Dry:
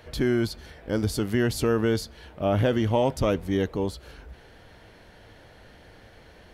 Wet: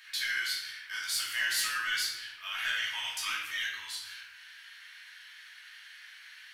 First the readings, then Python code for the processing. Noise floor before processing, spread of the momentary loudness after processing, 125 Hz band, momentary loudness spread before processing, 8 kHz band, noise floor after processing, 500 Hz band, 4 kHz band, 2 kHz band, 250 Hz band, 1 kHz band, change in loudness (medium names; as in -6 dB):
-52 dBFS, 20 LU, under -40 dB, 9 LU, +4.5 dB, -52 dBFS, -38.0 dB, +6.0 dB, +5.5 dB, under -40 dB, -9.5 dB, -6.5 dB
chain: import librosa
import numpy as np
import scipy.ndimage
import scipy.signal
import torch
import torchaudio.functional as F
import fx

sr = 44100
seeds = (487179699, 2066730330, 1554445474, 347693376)

y = scipy.signal.sosfilt(scipy.signal.cheby2(4, 50, 610.0, 'highpass', fs=sr, output='sos'), x)
y = 10.0 ** (-27.0 / 20.0) * np.tanh(y / 10.0 ** (-27.0 / 20.0))
y = fx.room_shoebox(y, sr, seeds[0], volume_m3=330.0, walls='mixed', distance_m=2.7)